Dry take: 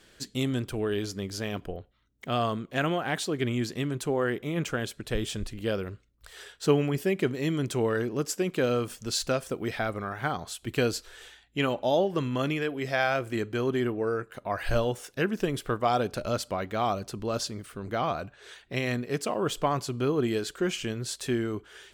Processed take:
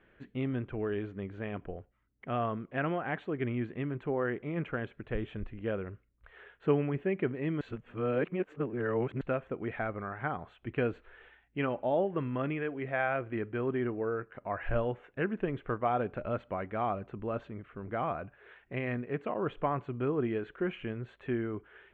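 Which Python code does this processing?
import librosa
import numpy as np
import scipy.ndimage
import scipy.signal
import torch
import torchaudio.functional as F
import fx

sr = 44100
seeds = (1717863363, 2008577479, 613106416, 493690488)

y = fx.edit(x, sr, fx.reverse_span(start_s=7.61, length_s=1.6), tone=tone)
y = scipy.signal.sosfilt(scipy.signal.cheby2(4, 40, 4700.0, 'lowpass', fs=sr, output='sos'), y)
y = y * 10.0 ** (-4.5 / 20.0)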